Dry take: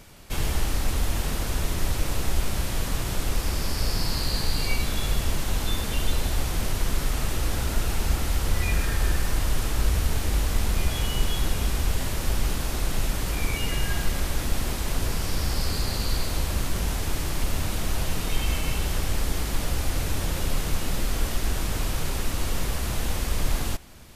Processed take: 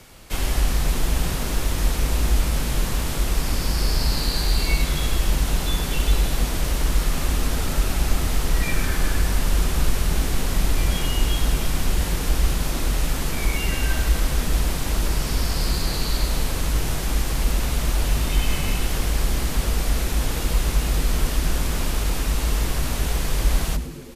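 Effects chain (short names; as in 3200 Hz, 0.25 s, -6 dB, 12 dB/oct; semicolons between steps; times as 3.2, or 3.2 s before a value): frequency shift -60 Hz; frequency-shifting echo 0.104 s, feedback 60%, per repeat -96 Hz, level -13.5 dB; gain +3 dB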